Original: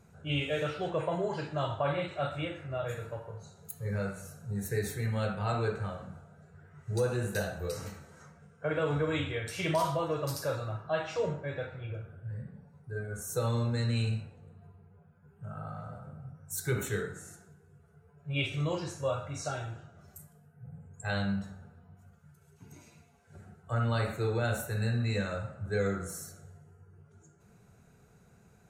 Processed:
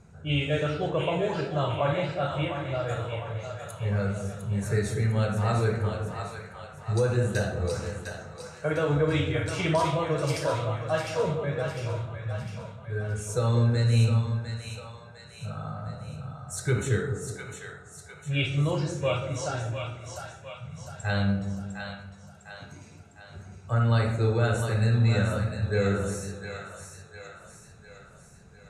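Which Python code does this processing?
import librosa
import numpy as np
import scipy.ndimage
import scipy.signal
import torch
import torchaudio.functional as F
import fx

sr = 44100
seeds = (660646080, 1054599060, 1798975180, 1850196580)

y = scipy.signal.sosfilt(scipy.signal.butter(4, 9500.0, 'lowpass', fs=sr, output='sos'), x)
y = fx.low_shelf(y, sr, hz=92.0, db=8.0)
y = fx.echo_split(y, sr, split_hz=580.0, low_ms=188, high_ms=704, feedback_pct=52, wet_db=-6.5)
y = y * librosa.db_to_amplitude(3.5)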